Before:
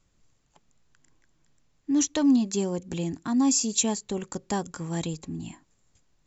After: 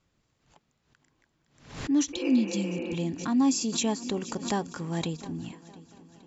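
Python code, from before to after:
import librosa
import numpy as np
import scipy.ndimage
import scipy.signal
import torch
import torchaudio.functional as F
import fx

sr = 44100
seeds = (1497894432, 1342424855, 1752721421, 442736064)

y = fx.highpass(x, sr, hz=90.0, slope=6)
y = fx.spec_repair(y, sr, seeds[0], start_s=2.17, length_s=0.76, low_hz=260.0, high_hz=3000.0, source='after')
y = scipy.signal.sosfilt(scipy.signal.butter(2, 4900.0, 'lowpass', fs=sr, output='sos'), y)
y = fx.echo_heads(y, sr, ms=234, heads='second and third', feedback_pct=56, wet_db=-22)
y = fx.pre_swell(y, sr, db_per_s=110.0)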